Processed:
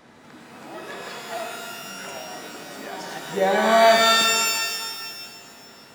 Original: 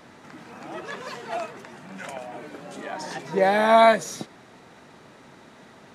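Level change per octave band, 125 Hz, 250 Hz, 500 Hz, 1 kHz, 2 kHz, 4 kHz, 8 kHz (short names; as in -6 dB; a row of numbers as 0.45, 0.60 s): -1.0, -0.5, +0.5, +1.0, +5.0, +13.5, +13.5 dB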